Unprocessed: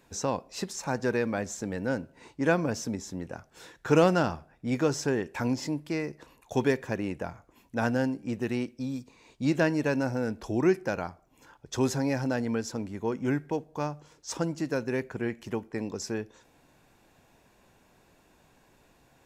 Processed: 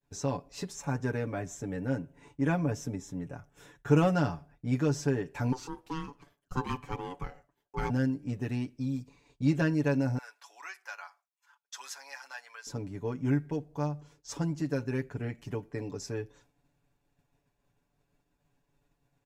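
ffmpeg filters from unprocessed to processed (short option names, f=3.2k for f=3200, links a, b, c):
-filter_complex "[0:a]asettb=1/sr,asplit=3[a][b][c];[a]atrim=end=0.744[d];[b]atrim=start=0.74:end=4.14,asetpts=PTS-STARTPTS,afade=t=in:d=0.004:c=qsin,afade=t=out:st=3.396:d=0.004:c=qsin,equalizer=f=4.5k:t=o:w=0.31:g=-11.5[e];[c]atrim=start=4.136[f];[d][e]acrossfade=d=0.004:c1=hsin:c2=qsin[g];[g][f]acrossfade=d=0.004:c1=qsin:c2=hsin,asettb=1/sr,asplit=3[h][i][j];[h]atrim=end=5.524[k];[i]atrim=start=5.52:end=7.9,asetpts=PTS-STARTPTS,afade=t=in:d=0.004:c=qsin,afade=t=out:st=2.376:d=0.004:c=qsin,aeval=exprs='val(0)*sin(2*PI*640*n/s)':c=same[l];[j]atrim=start=7.896[m];[k][l]acrossfade=d=0.004:c1=hsin:c2=qsin[n];[n][m]acrossfade=d=0.004:c1=qsin:c2=hsin,asettb=1/sr,asplit=3[o][p][q];[o]atrim=end=10.184[r];[p]atrim=start=10.18:end=12.67,asetpts=PTS-STARTPTS,afade=t=in:d=0.004:c=qsin,afade=t=out:st=2.486:d=0.004:c=qsin,highpass=f=1k:w=0.5412,highpass=f=1k:w=1.3066[s];[q]atrim=start=12.666[t];[r][s]acrossfade=d=0.004:c1=hsin:c2=qsin[u];[u][t]acrossfade=d=0.004:c1=qsin:c2=hsin,aecho=1:1:7:0.79,agate=range=-33dB:threshold=-50dB:ratio=3:detection=peak,lowshelf=f=170:g=11.5,volume=-7.5dB"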